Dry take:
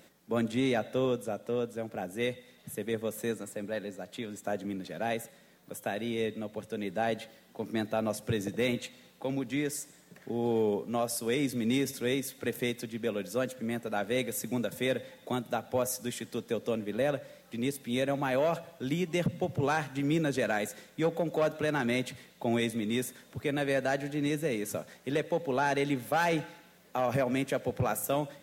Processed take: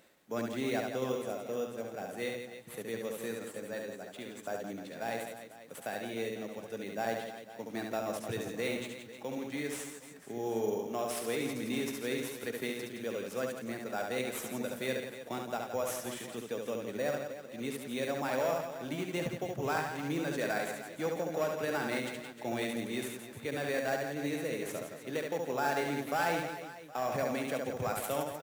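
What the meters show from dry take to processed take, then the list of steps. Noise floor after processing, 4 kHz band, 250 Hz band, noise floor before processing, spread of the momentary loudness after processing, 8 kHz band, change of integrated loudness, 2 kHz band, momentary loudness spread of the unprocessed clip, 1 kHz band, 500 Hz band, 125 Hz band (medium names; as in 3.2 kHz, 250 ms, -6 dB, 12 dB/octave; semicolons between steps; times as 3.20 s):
-50 dBFS, -3.5 dB, -6.0 dB, -59 dBFS, 8 LU, -3.0 dB, -4.0 dB, -2.5 dB, 9 LU, -2.0 dB, -3.5 dB, -7.5 dB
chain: reverse bouncing-ball echo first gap 70 ms, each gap 1.4×, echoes 5; in parallel at -4 dB: sample-rate reducer 6.3 kHz, jitter 0%; on the sum: bass shelf 320 Hz -8 dB; trim -7.5 dB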